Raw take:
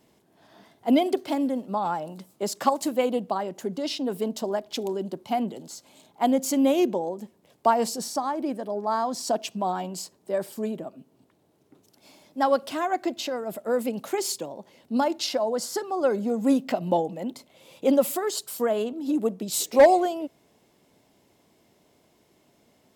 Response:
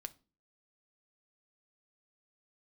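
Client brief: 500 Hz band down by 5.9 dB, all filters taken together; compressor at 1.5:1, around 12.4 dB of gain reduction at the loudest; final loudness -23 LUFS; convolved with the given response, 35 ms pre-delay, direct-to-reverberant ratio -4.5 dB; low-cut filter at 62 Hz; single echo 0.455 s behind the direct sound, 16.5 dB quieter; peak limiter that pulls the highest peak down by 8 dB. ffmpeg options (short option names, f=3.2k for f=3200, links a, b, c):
-filter_complex "[0:a]highpass=62,equalizer=f=500:t=o:g=-7.5,acompressor=threshold=-53dB:ratio=1.5,alimiter=level_in=6dB:limit=-24dB:level=0:latency=1,volume=-6dB,aecho=1:1:455:0.15,asplit=2[a][b];[1:a]atrim=start_sample=2205,adelay=35[c];[b][c]afir=irnorm=-1:irlink=0,volume=8.5dB[d];[a][d]amix=inputs=2:normalize=0,volume=12dB"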